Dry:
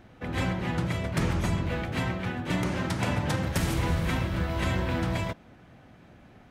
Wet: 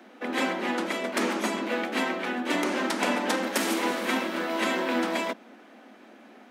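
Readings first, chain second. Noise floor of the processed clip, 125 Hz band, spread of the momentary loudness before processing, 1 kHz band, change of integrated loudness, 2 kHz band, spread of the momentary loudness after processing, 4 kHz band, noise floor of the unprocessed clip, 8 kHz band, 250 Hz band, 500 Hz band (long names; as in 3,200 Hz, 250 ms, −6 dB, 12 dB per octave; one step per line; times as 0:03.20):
−52 dBFS, below −20 dB, 3 LU, +5.0 dB, +1.5 dB, +5.0 dB, 3 LU, +5.0 dB, −54 dBFS, +5.0 dB, +1.5 dB, +5.0 dB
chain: Butterworth high-pass 210 Hz 96 dB per octave
level +5 dB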